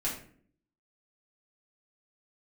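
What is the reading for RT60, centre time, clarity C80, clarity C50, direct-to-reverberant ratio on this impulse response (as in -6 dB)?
0.55 s, 30 ms, 10.0 dB, 6.0 dB, -7.0 dB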